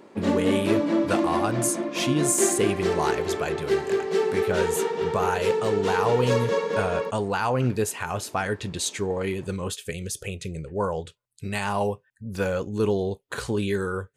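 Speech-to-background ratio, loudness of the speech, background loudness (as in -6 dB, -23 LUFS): -1.5 dB, -27.5 LUFS, -26.0 LUFS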